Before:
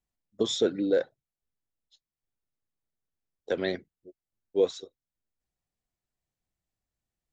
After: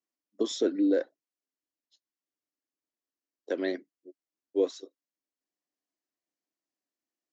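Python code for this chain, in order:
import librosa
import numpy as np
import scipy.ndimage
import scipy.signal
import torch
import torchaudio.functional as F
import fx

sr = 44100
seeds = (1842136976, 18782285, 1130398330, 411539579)

y = fx.cabinet(x, sr, low_hz=270.0, low_slope=24, high_hz=6900.0, hz=(290.0, 460.0, 810.0, 1400.0, 2400.0, 3600.0), db=(7, -4, -6, -5, -5, -8))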